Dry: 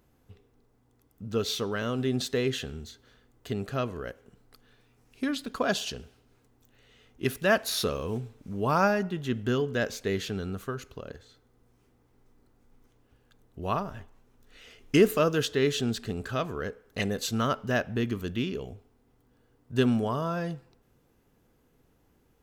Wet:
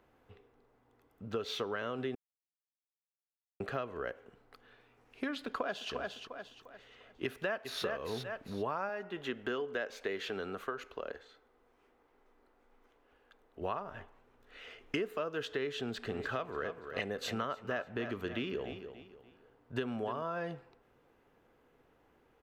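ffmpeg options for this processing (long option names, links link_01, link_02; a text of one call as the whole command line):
ffmpeg -i in.wav -filter_complex "[0:a]asplit=2[link_01][link_02];[link_02]afade=type=in:start_time=5.3:duration=0.01,afade=type=out:start_time=5.92:duration=0.01,aecho=0:1:350|700|1050|1400:0.237137|0.0829981|0.0290493|0.0101673[link_03];[link_01][link_03]amix=inputs=2:normalize=0,asplit=2[link_04][link_05];[link_05]afade=type=in:start_time=7.24:duration=0.01,afade=type=out:start_time=7.83:duration=0.01,aecho=0:1:400|800|1200:0.446684|0.0893367|0.0178673[link_06];[link_04][link_06]amix=inputs=2:normalize=0,asettb=1/sr,asplit=3[link_07][link_08][link_09];[link_07]atrim=end=8.894[link_10];[link_08]atrim=start=8.89:end=13.61,asetpts=PTS-STARTPTS,afade=type=in:duration=0.004:curve=qsin,afade=type=out:start_time=4.716:duration=0.004:curve=qsin,equalizer=frequency=110:width_type=o:width=1.5:gain=-12.5[link_11];[link_09]atrim=start=13.606[link_12];[link_10][link_11]acrossfade=duration=0.004:curve1=hsin:curve2=qsin[link_13];[link_13][link_12]acrossfade=duration=0.004:curve1=qsin:curve2=hsin,asplit=3[link_14][link_15][link_16];[link_14]afade=type=out:start_time=16.09:duration=0.02[link_17];[link_15]aecho=1:1:291|582|873:0.211|0.0697|0.023,afade=type=in:start_time=16.09:duration=0.02,afade=type=out:start_time=20.21:duration=0.02[link_18];[link_16]afade=type=in:start_time=20.21:duration=0.02[link_19];[link_17][link_18][link_19]amix=inputs=3:normalize=0,asplit=3[link_20][link_21][link_22];[link_20]atrim=end=2.15,asetpts=PTS-STARTPTS,afade=type=out:start_time=2.146:duration=0.004:curve=hsin[link_23];[link_21]atrim=start=2.15:end=3.6,asetpts=PTS-STARTPTS,volume=0[link_24];[link_22]atrim=start=3.6,asetpts=PTS-STARTPTS,afade=type=in:duration=0.004:curve=hsin[link_25];[link_23][link_24][link_25]concat=n=3:v=0:a=1,acrossover=split=360 3200:gain=0.251 1 0.158[link_26][link_27][link_28];[link_26][link_27][link_28]amix=inputs=3:normalize=0,acompressor=threshold=-37dB:ratio=8,volume=4dB" out.wav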